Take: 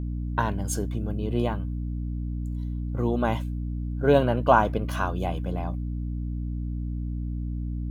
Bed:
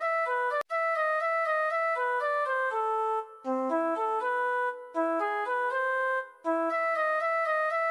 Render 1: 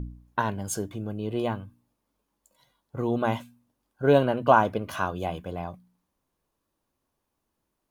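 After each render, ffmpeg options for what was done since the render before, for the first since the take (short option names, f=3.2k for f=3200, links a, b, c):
-af "bandreject=f=60:t=h:w=4,bandreject=f=120:t=h:w=4,bandreject=f=180:t=h:w=4,bandreject=f=240:t=h:w=4,bandreject=f=300:t=h:w=4"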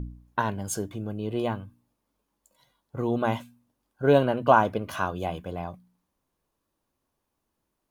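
-af anull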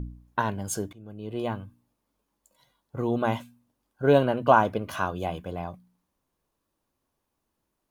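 -filter_complex "[0:a]asplit=2[a][b];[a]atrim=end=0.93,asetpts=PTS-STARTPTS,afade=t=out:st=0.926:d=0.004:c=hsin:silence=0.11885[c];[b]atrim=start=0.93,asetpts=PTS-STARTPTS,afade=t=in:d=0.69:silence=0.11885[d];[c][d]concat=n=2:v=0:a=1"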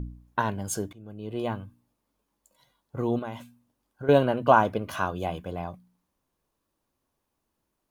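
-filter_complex "[0:a]asettb=1/sr,asplit=3[a][b][c];[a]atrim=end=3.194[d];[b]atrim=start=3.19:end=4.09,asetpts=PTS-STARTPTS,afade=t=in:d=0.004:c=qsin,afade=t=out:st=0.896:d=0.004:c=qsin,acompressor=threshold=-34dB:ratio=3:attack=3.2:release=140:knee=1:detection=peak[e];[c]atrim=start=4.086[f];[d][e]acrossfade=d=0.004:c1=hsin:c2=qsin[g];[g][f]acrossfade=d=0.004:c1=qsin:c2=hsin"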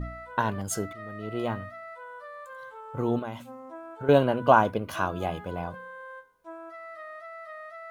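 -filter_complex "[1:a]volume=-14.5dB[a];[0:a][a]amix=inputs=2:normalize=0"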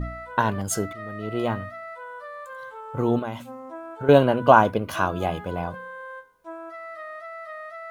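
-af "volume=4.5dB,alimiter=limit=-1dB:level=0:latency=1"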